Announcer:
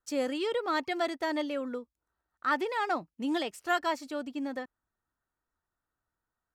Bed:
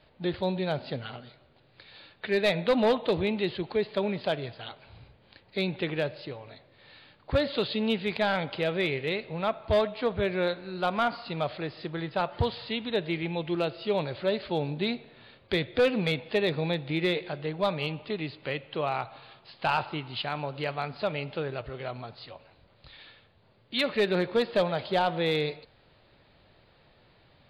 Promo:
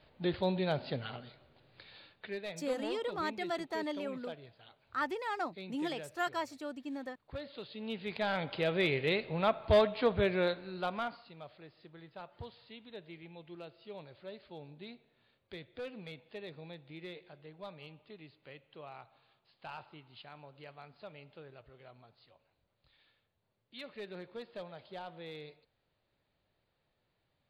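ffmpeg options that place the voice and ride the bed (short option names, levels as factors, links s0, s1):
-filter_complex "[0:a]adelay=2500,volume=0.501[s0];[1:a]volume=4.73,afade=t=out:st=1.82:d=0.59:silence=0.188365,afade=t=in:st=7.72:d=1.34:silence=0.149624,afade=t=out:st=10.12:d=1.2:silence=0.11885[s1];[s0][s1]amix=inputs=2:normalize=0"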